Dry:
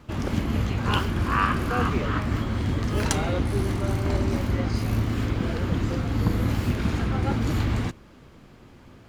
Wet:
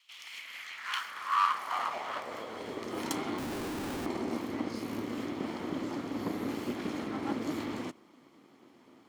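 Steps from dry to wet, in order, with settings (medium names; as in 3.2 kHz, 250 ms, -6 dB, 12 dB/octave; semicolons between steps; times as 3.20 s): comb filter that takes the minimum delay 0.94 ms; high-pass sweep 2.9 kHz -> 300 Hz, 0.13–3.11 s; 3.38–4.06 s: Schmitt trigger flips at -34.5 dBFS; trim -8 dB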